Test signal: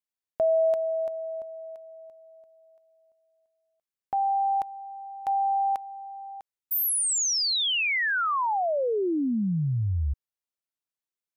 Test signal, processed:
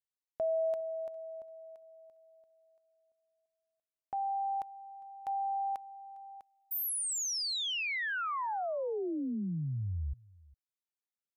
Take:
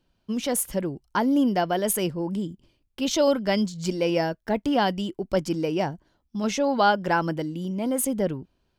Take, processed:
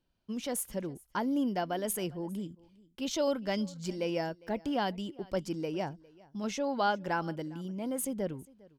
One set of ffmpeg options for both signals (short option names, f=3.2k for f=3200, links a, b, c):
-af "aecho=1:1:405:0.0668,volume=-9dB"